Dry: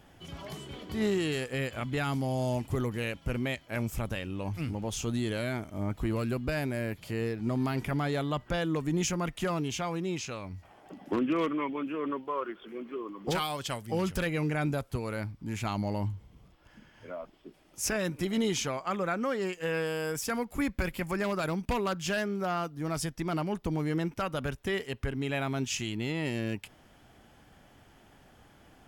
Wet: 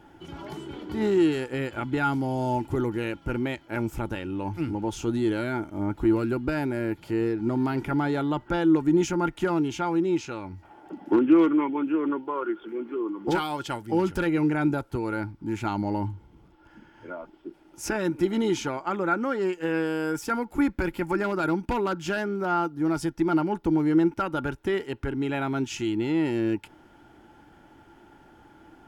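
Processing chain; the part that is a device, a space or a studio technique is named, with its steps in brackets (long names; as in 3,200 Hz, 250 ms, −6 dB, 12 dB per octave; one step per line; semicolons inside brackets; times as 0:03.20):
inside a helmet (high-shelf EQ 4,700 Hz −6 dB; hollow resonant body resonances 330/870/1,400 Hz, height 14 dB, ringing for 45 ms)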